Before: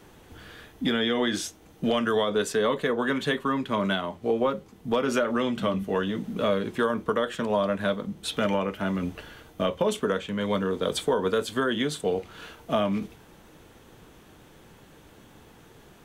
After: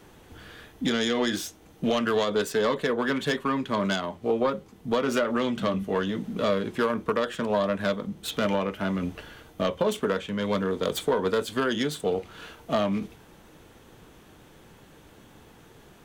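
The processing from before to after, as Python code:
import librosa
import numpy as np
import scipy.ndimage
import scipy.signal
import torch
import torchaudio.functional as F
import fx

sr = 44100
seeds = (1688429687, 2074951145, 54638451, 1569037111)

y = fx.self_delay(x, sr, depth_ms=0.075)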